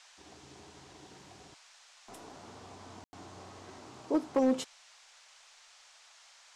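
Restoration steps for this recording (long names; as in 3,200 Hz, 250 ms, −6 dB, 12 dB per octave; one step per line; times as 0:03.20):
clipped peaks rebuilt −20.5 dBFS
ambience match 0:03.04–0:03.13
noise reduction from a noise print 29 dB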